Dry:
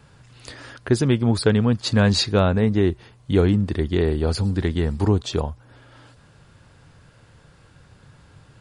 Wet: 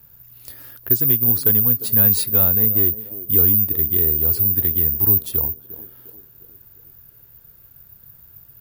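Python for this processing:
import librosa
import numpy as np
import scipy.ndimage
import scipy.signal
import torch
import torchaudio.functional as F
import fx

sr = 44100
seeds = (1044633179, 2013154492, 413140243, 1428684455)

y = fx.low_shelf(x, sr, hz=130.0, db=7.5)
y = fx.echo_banded(y, sr, ms=353, feedback_pct=54, hz=380.0, wet_db=-13)
y = (np.kron(y[::3], np.eye(3)[0]) * 3)[:len(y)]
y = fx.high_shelf(y, sr, hz=5700.0, db=7.0)
y = F.gain(torch.from_numpy(y), -10.5).numpy()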